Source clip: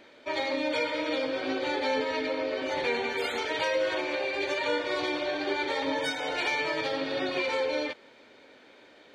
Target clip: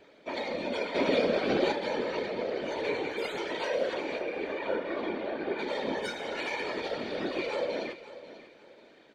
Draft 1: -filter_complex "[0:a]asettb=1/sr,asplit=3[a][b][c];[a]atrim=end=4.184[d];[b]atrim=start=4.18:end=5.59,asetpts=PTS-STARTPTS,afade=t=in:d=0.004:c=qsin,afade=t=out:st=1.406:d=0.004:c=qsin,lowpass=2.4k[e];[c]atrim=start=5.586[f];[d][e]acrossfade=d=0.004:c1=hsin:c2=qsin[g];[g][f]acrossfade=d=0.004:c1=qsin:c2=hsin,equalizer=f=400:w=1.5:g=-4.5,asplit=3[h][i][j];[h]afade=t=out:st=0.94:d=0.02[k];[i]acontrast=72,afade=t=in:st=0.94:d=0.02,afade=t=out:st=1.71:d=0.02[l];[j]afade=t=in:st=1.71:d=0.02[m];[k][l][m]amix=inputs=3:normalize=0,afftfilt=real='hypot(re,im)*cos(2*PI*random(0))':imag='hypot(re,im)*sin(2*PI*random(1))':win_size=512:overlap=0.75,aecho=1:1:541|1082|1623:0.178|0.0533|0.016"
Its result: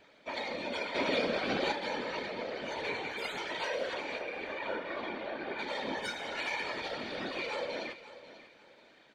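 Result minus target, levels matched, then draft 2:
500 Hz band -3.0 dB
-filter_complex "[0:a]asettb=1/sr,asplit=3[a][b][c];[a]atrim=end=4.184[d];[b]atrim=start=4.18:end=5.59,asetpts=PTS-STARTPTS,afade=t=in:d=0.004:c=qsin,afade=t=out:st=1.406:d=0.004:c=qsin,lowpass=2.4k[e];[c]atrim=start=5.586[f];[d][e]acrossfade=d=0.004:c1=hsin:c2=qsin[g];[g][f]acrossfade=d=0.004:c1=qsin:c2=hsin,equalizer=f=400:w=1.5:g=6,asplit=3[h][i][j];[h]afade=t=out:st=0.94:d=0.02[k];[i]acontrast=72,afade=t=in:st=0.94:d=0.02,afade=t=out:st=1.71:d=0.02[l];[j]afade=t=in:st=1.71:d=0.02[m];[k][l][m]amix=inputs=3:normalize=0,afftfilt=real='hypot(re,im)*cos(2*PI*random(0))':imag='hypot(re,im)*sin(2*PI*random(1))':win_size=512:overlap=0.75,aecho=1:1:541|1082|1623:0.178|0.0533|0.016"

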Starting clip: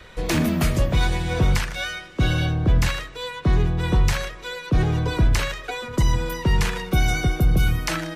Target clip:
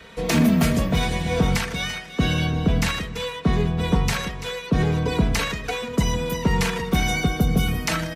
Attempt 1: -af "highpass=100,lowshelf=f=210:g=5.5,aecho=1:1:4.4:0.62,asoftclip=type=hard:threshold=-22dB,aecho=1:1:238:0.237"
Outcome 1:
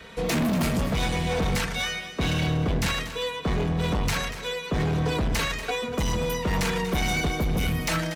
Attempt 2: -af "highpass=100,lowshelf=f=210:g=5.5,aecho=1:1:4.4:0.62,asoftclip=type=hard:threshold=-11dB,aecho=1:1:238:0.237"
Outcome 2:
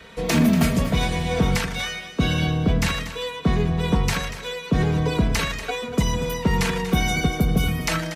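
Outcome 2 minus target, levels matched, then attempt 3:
echo 99 ms early
-af "highpass=100,lowshelf=f=210:g=5.5,aecho=1:1:4.4:0.62,asoftclip=type=hard:threshold=-11dB,aecho=1:1:337:0.237"

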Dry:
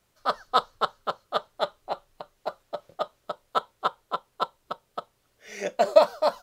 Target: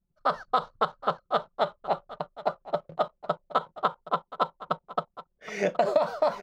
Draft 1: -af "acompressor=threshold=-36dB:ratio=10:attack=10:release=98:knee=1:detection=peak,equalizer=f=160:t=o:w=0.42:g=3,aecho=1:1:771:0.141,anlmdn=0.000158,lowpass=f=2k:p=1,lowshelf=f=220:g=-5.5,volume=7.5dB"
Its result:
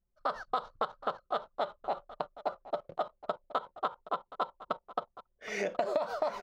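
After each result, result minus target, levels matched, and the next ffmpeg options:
compressor: peak gain reduction +8 dB; 125 Hz band -6.5 dB
-af "acompressor=threshold=-27dB:ratio=10:attack=10:release=98:knee=1:detection=peak,equalizer=f=160:t=o:w=0.42:g=3,aecho=1:1:771:0.141,anlmdn=0.000158,lowpass=f=2k:p=1,lowshelf=f=220:g=-5.5,volume=7.5dB"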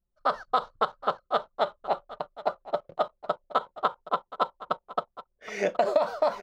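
125 Hz band -7.0 dB
-af "acompressor=threshold=-27dB:ratio=10:attack=10:release=98:knee=1:detection=peak,equalizer=f=160:t=o:w=0.42:g=13.5,aecho=1:1:771:0.141,anlmdn=0.000158,lowpass=f=2k:p=1,lowshelf=f=220:g=-5.5,volume=7.5dB"

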